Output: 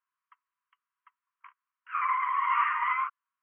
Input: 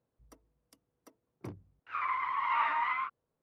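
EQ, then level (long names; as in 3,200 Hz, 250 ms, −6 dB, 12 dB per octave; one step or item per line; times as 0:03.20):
linear-phase brick-wall band-pass 950–3,300 Hz
high-frequency loss of the air 410 metres
+7.5 dB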